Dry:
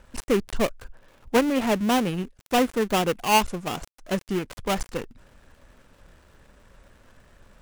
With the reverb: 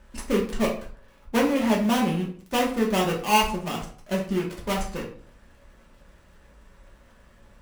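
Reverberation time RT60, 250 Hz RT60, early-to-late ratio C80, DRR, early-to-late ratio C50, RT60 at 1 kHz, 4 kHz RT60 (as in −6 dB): 0.50 s, 0.60 s, 12.0 dB, −3.0 dB, 7.5 dB, 0.50 s, 0.35 s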